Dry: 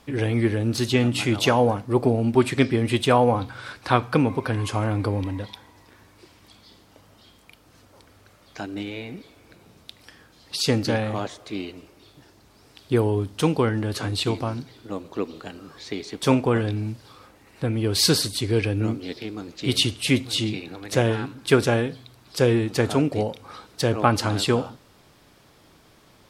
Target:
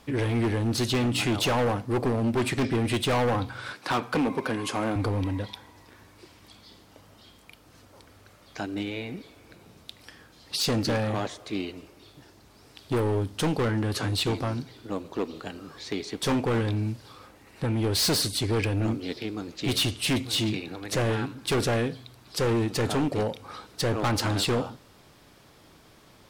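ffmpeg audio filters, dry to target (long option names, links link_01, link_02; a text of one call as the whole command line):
ffmpeg -i in.wav -filter_complex "[0:a]asettb=1/sr,asplit=3[link_01][link_02][link_03];[link_01]atrim=end=3.744[link_04];[link_02]atrim=start=3.74:end=4.96,asetpts=PTS-STARTPTS,afade=type=in:duration=0.004:curve=qsin,afade=type=out:start_time=1.216:duration=0.004:curve=qsin,highpass=frequency=160:width=0.5412,highpass=frequency=160:width=1.3066[link_05];[link_03]atrim=start=4.956[link_06];[link_04][link_05]acrossfade=duration=0.004:curve1=hsin:curve2=qsin[link_07];[link_07][link_06]acrossfade=duration=0.004:curve1=qsin:curve2=hsin,volume=21.5dB,asoftclip=hard,volume=-21.5dB" out.wav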